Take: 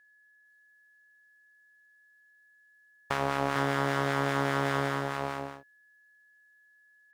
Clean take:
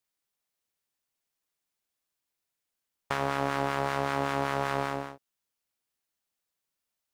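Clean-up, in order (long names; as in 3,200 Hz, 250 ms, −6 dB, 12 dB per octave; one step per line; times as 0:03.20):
notch filter 1,700 Hz, Q 30
echo removal 454 ms −3.5 dB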